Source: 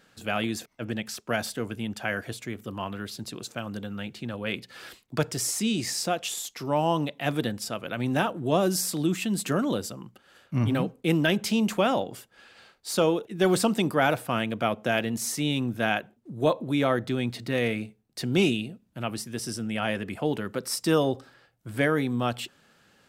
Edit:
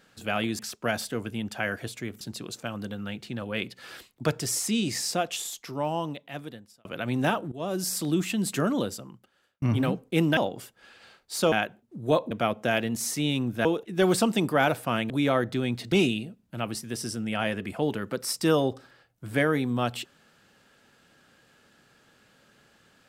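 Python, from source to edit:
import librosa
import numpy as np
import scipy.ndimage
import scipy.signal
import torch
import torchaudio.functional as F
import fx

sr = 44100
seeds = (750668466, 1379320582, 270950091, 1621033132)

y = fx.edit(x, sr, fx.cut(start_s=0.59, length_s=0.45),
    fx.cut(start_s=2.66, length_s=0.47),
    fx.fade_out_span(start_s=6.16, length_s=1.61),
    fx.fade_in_from(start_s=8.44, length_s=0.49, floor_db=-18.5),
    fx.fade_out_span(start_s=9.69, length_s=0.85),
    fx.cut(start_s=11.29, length_s=0.63),
    fx.swap(start_s=13.07, length_s=1.45, other_s=15.86, other_length_s=0.79),
    fx.cut(start_s=17.47, length_s=0.88), tone=tone)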